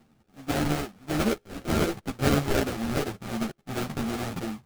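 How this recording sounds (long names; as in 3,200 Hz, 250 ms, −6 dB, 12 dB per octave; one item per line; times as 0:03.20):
a buzz of ramps at a fixed pitch in blocks of 32 samples
phaser sweep stages 8, 2.7 Hz, lowest notch 540–1,300 Hz
aliases and images of a low sample rate 1,000 Hz, jitter 20%
a shimmering, thickened sound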